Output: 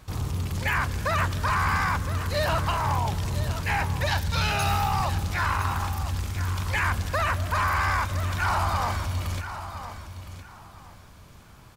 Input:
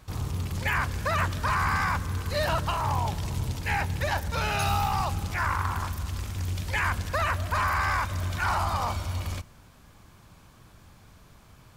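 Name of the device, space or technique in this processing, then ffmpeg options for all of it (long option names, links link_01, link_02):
parallel distortion: -filter_complex "[0:a]asettb=1/sr,asplit=3[link_01][link_02][link_03];[link_01]atrim=end=4.064[link_04];[link_02]atrim=start=4.06:end=4.52,asetpts=PTS-STARTPTS,afade=type=in:duration=0.004:curve=qsin,afade=type=out:start_time=0.456:duration=0.004:curve=qsin,equalizer=frequency=125:width_type=o:width=1:gain=5,equalizer=frequency=500:width_type=o:width=1:gain=-6,equalizer=frequency=4000:width_type=o:width=1:gain=7[link_05];[link_03]atrim=start=4.516[link_06];[link_04][link_05]acrossfade=duration=0.004:curve1=hsin:curve2=qsin[link_07];[link_07][link_06]acrossfade=duration=0.004:curve1=qsin:curve2=hsin,aecho=1:1:1013|2026|3039:0.251|0.0603|0.0145,asplit=2[link_08][link_09];[link_09]asoftclip=type=hard:threshold=-28.5dB,volume=-10dB[link_10];[link_08][link_10]amix=inputs=2:normalize=0"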